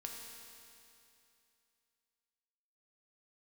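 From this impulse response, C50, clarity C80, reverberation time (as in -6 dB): 1.5 dB, 2.5 dB, 2.7 s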